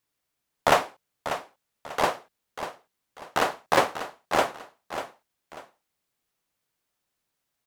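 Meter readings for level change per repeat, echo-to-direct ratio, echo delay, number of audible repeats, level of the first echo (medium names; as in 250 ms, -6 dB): -9.5 dB, -10.0 dB, 592 ms, 2, -10.5 dB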